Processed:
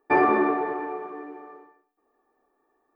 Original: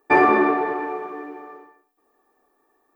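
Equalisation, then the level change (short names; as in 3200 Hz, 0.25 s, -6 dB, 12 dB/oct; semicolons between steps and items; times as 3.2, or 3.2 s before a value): high shelf 3100 Hz -10 dB; -3.5 dB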